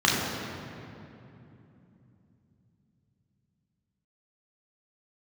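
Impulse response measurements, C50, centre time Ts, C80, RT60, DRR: 0.0 dB, 127 ms, 1.0 dB, 2.9 s, −5.0 dB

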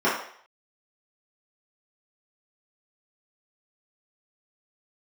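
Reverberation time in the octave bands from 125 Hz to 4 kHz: 0.35, 0.45, 0.55, 0.60, 0.60, 0.60 seconds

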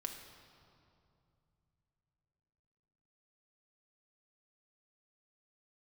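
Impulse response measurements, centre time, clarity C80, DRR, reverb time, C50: 42 ms, 7.5 dB, 3.0 dB, 2.6 s, 6.0 dB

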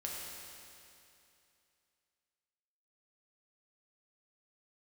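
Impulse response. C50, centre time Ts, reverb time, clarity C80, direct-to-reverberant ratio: −1.0 dB, 140 ms, 2.7 s, 0.5 dB, −3.5 dB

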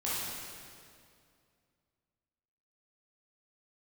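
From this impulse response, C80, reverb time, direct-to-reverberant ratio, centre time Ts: −1.0 dB, 2.3 s, −9.5 dB, 147 ms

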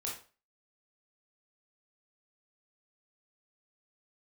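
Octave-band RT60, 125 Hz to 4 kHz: 0.35, 0.35, 0.40, 0.35, 0.35, 0.30 seconds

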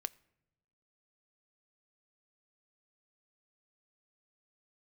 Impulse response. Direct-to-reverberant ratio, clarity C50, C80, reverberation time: 15.0 dB, 24.0 dB, 25.5 dB, non-exponential decay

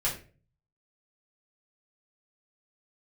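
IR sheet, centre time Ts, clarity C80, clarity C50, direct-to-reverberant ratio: 23 ms, 13.5 dB, 8.5 dB, −7.0 dB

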